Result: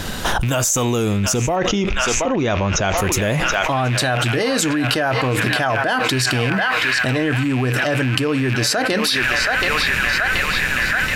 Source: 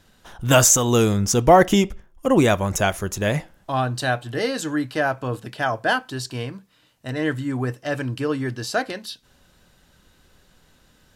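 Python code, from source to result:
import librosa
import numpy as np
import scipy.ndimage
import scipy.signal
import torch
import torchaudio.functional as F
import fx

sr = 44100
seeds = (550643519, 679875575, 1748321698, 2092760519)

y = fx.rattle_buzz(x, sr, strikes_db=-32.0, level_db=-25.0)
y = fx.steep_lowpass(y, sr, hz=6500.0, slope=96, at=(1.55, 2.97), fade=0.02)
y = fx.echo_banded(y, sr, ms=727, feedback_pct=77, hz=1900.0, wet_db=-13)
y = fx.env_flatten(y, sr, amount_pct=100)
y = F.gain(torch.from_numpy(y), -9.5).numpy()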